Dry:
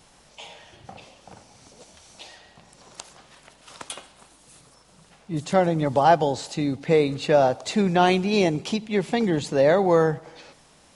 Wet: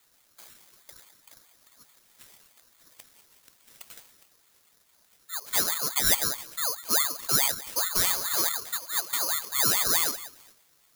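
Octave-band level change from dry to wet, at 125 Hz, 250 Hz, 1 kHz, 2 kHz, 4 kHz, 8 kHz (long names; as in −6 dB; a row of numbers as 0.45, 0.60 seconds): −18.0, −20.5, −12.5, −3.0, +4.0, +13.5 decibels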